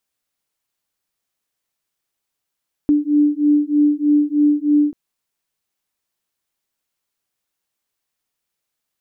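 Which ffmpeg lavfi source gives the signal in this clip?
-f lavfi -i "aevalsrc='0.168*(sin(2*PI*293*t)+sin(2*PI*296.2*t))':d=2.04:s=44100"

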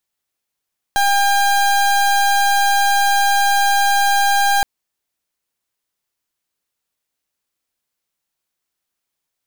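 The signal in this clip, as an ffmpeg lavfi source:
-f lavfi -i "aevalsrc='0.188*(2*lt(mod(802*t,1),0.3)-1)':d=3.67:s=44100"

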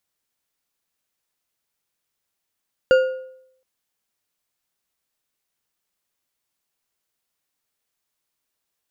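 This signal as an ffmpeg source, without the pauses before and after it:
-f lavfi -i "aevalsrc='0.376*pow(10,-3*t/0.73)*sin(2*PI*519*t)+0.133*pow(10,-3*t/0.539)*sin(2*PI*1430.9*t)+0.0473*pow(10,-3*t/0.44)*sin(2*PI*2804.7*t)+0.0168*pow(10,-3*t/0.378)*sin(2*PI*4636.2*t)+0.00596*pow(10,-3*t/0.336)*sin(2*PI*6923.5*t)':d=0.72:s=44100"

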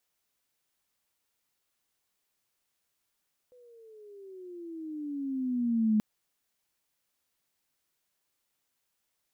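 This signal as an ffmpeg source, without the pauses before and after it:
-f lavfi -i "aevalsrc='pow(10,(-21+33*(t/2.48-1))/20)*sin(2*PI*502*2.48/(-15*log(2)/12)*(exp(-15*log(2)/12*t/2.48)-1))':d=2.48:s=44100"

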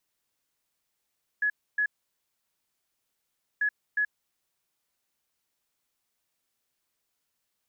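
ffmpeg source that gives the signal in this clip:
-f lavfi -i "aevalsrc='0.075*sin(2*PI*1690*t)*clip(min(mod(mod(t,2.19),0.36),0.08-mod(mod(t,2.19),0.36))/0.005,0,1)*lt(mod(t,2.19),0.72)':d=4.38:s=44100"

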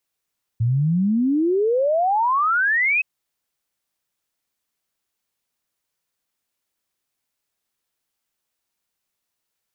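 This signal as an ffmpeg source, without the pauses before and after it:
-f lavfi -i "aevalsrc='0.158*clip(min(t,2.42-t)/0.01,0,1)*sin(2*PI*110*2.42/log(2600/110)*(exp(log(2600/110)*t/2.42)-1))':d=2.42:s=44100"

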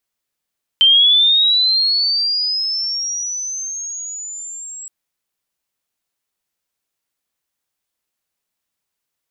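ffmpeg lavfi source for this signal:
-f lavfi -i "aevalsrc='pow(10,(-7-22.5*t/4.07)/20)*sin(2*PI*(3100*t+4600*t*t/(2*4.07)))':d=4.07:s=44100"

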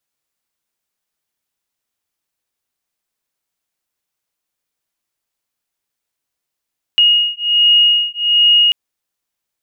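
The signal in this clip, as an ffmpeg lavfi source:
-f lavfi -i "aevalsrc='0.237*(sin(2*PI*2870*t)+sin(2*PI*2871.3*t))':d=1.74:s=44100"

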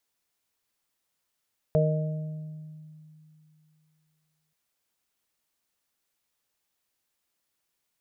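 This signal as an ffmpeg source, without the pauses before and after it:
-f lavfi -i "aevalsrc='0.0891*pow(10,-3*t/2.87)*sin(2*PI*155*t)+0.00891*pow(10,-3*t/1.67)*sin(2*PI*310*t)+0.0631*pow(10,-3*t/1)*sin(2*PI*465*t)+0.0841*pow(10,-3*t/1.19)*sin(2*PI*620*t)':d=2.78:s=44100"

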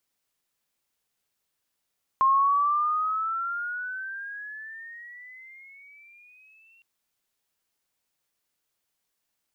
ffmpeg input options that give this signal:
-f lavfi -i "aevalsrc='pow(10,(-16.5-39*t/4.61)/20)*sin(2*PI*1060*4.61/(16.5*log(2)/12)*(exp(16.5*log(2)/12*t/4.61)-1))':d=4.61:s=44100"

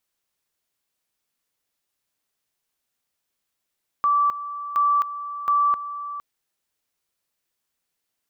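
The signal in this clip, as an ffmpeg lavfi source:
-f lavfi -i "aevalsrc='pow(10,(-16-13*gte(mod(t,0.72),0.26))/20)*sin(2*PI*1160*t)':d=2.16:s=44100"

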